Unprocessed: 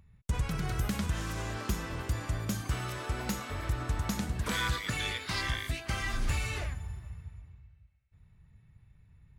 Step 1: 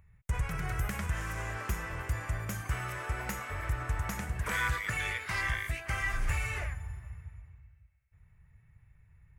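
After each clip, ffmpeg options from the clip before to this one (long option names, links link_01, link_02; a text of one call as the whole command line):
ffmpeg -i in.wav -af "equalizer=frequency=250:width_type=o:width=1:gain=-11,equalizer=frequency=2000:width_type=o:width=1:gain=7,equalizer=frequency=4000:width_type=o:width=1:gain=-12" out.wav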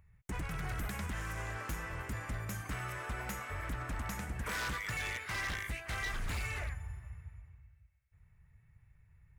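ffmpeg -i in.wav -af "aeval=exprs='0.0376*(abs(mod(val(0)/0.0376+3,4)-2)-1)':channel_layout=same,volume=-3dB" out.wav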